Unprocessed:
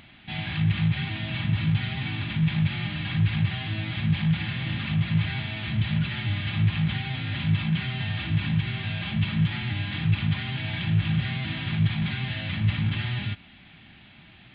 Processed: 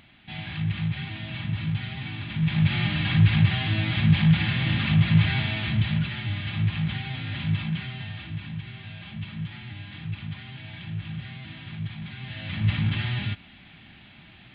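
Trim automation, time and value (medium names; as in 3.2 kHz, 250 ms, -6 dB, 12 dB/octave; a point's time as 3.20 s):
2.27 s -4 dB
2.76 s +5 dB
5.48 s +5 dB
6.18 s -2 dB
7.56 s -2 dB
8.45 s -10 dB
12.12 s -10 dB
12.70 s +1 dB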